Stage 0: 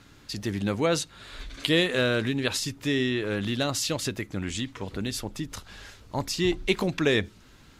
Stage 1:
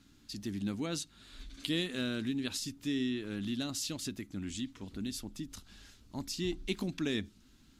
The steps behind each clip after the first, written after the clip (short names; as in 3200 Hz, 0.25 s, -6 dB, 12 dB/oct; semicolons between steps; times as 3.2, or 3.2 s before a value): graphic EQ 125/250/500/1000/2000 Hz -6/+7/-11/-6/-6 dB; gain -7.5 dB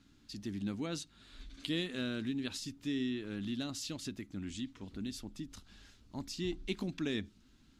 high shelf 8800 Hz -10.5 dB; gain -2 dB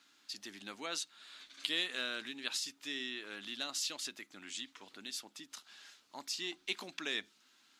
HPF 790 Hz 12 dB/oct; gain +5.5 dB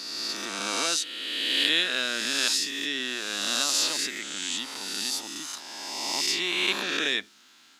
spectral swells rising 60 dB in 2.07 s; gain +8 dB